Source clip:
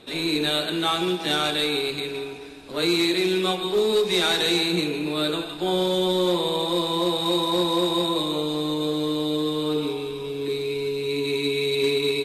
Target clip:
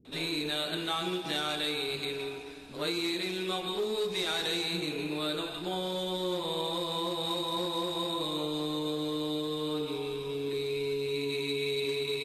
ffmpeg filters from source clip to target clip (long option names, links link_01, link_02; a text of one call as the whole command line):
ffmpeg -i in.wav -filter_complex "[0:a]acompressor=threshold=-24dB:ratio=6,acrossover=split=290[link_01][link_02];[link_02]adelay=50[link_03];[link_01][link_03]amix=inputs=2:normalize=0,volume=-4dB" out.wav